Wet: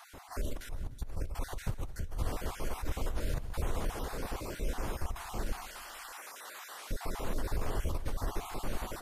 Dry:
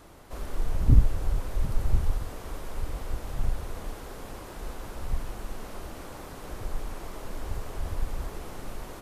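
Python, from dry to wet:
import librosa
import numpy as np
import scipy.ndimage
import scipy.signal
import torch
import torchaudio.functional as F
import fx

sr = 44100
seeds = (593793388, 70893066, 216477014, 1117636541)

y = fx.spec_dropout(x, sr, seeds[0], share_pct=28)
y = fx.highpass(y, sr, hz=1200.0, slope=12, at=(5.65, 6.91))
y = fx.over_compress(y, sr, threshold_db=-32.0, ratio=-1.0)
y = fx.echo_feedback(y, sr, ms=149, feedback_pct=53, wet_db=-18)
y = y * 10.0 ** (-1.0 / 20.0)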